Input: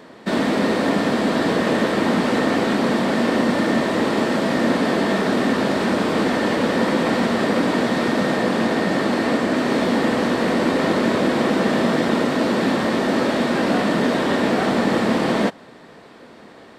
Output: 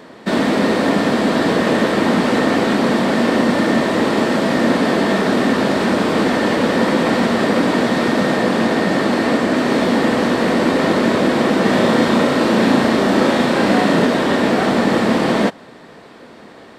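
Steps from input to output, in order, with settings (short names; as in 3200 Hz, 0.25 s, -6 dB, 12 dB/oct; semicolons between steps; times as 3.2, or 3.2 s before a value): 11.61–14.05 flutter echo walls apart 6.1 m, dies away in 0.42 s; gain +3.5 dB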